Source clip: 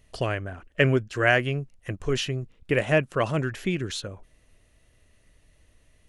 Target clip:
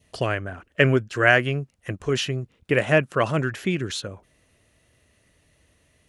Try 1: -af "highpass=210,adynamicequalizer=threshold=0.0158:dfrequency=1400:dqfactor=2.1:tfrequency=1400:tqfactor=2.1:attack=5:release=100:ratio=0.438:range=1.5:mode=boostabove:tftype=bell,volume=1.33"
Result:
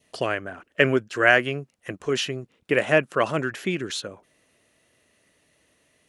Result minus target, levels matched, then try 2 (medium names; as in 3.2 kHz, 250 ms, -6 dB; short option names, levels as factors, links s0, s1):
125 Hz band -7.0 dB
-af "highpass=82,adynamicequalizer=threshold=0.0158:dfrequency=1400:dqfactor=2.1:tfrequency=1400:tqfactor=2.1:attack=5:release=100:ratio=0.438:range=1.5:mode=boostabove:tftype=bell,volume=1.33"